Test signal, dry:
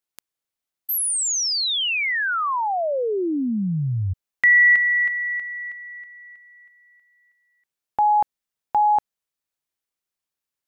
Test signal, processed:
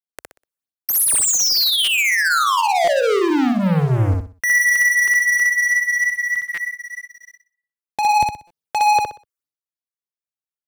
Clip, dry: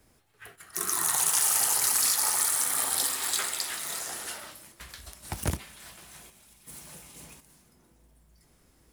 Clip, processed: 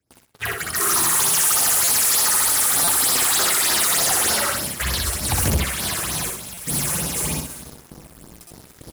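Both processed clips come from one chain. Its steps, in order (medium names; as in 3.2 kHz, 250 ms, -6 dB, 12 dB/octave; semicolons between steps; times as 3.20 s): high-pass 60 Hz 24 dB/octave; phase shifter stages 6, 3.3 Hz, lowest notch 180–2700 Hz; in parallel at +2 dB: compression, threshold -35 dBFS; on the sum: gate with hold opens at -47 dBFS, hold 401 ms, range -10 dB; peak limiter -17 dBFS; waveshaping leveller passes 5; on a send: feedback delay 62 ms, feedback 29%, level -3 dB; on the sum: buffer glitch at 1.84/2.84/6.54/8.47 s, samples 256, times 5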